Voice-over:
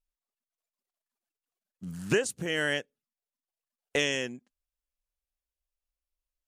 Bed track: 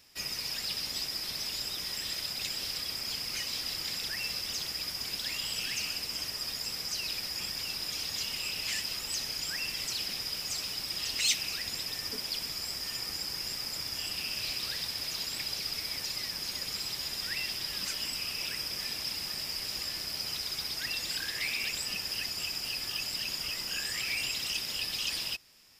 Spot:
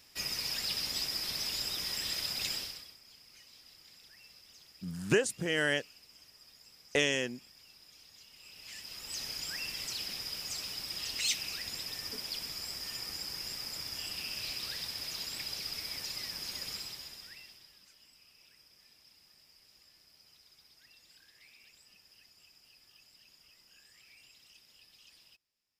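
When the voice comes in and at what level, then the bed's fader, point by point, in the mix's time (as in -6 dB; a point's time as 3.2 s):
3.00 s, -1.0 dB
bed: 2.55 s 0 dB
2.99 s -22 dB
8.3 s -22 dB
9.24 s -4 dB
16.72 s -4 dB
17.86 s -26.5 dB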